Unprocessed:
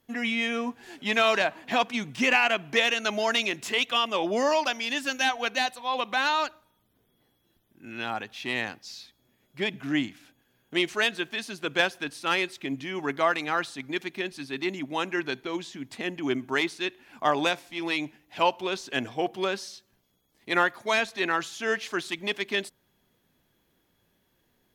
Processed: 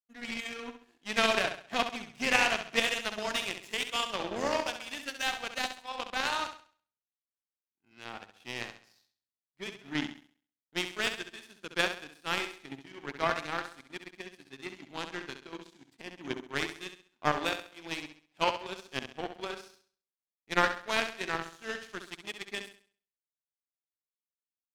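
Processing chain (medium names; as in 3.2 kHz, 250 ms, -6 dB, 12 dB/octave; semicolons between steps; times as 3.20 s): flutter echo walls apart 11.4 m, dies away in 0.88 s; power-law waveshaper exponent 2; trim +1.5 dB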